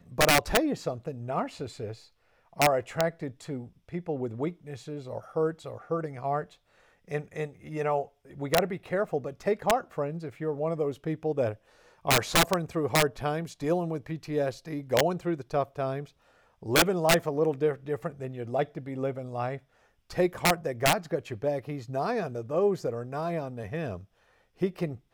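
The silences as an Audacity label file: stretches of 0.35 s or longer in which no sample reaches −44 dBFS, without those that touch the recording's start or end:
1.990000	2.530000	silence
6.530000	7.080000	silence
11.550000	12.050000	silence
16.070000	16.620000	silence
19.580000	20.100000	silence
24.040000	24.610000	silence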